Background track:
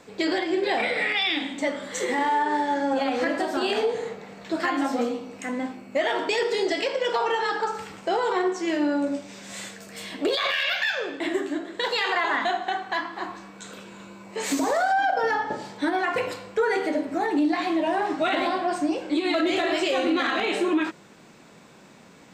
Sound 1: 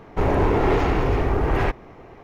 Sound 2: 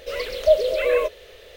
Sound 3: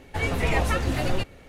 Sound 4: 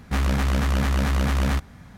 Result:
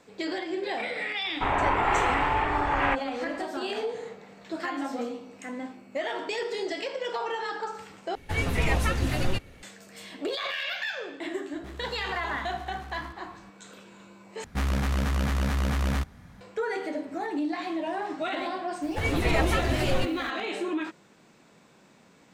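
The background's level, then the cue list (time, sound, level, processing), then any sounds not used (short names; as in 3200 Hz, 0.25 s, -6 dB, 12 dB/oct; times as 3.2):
background track -7 dB
1.24 add 1 -13 dB + band shelf 1600 Hz +15.5 dB 2.6 oct
8.15 replace with 3 -0.5 dB + bell 640 Hz -4 dB 1.7 oct
11.53 add 4 -11.5 dB + compressor 4:1, threshold -32 dBFS
14.44 replace with 4 -4.5 dB
18.82 add 3 -1.5 dB + added noise pink -54 dBFS
not used: 2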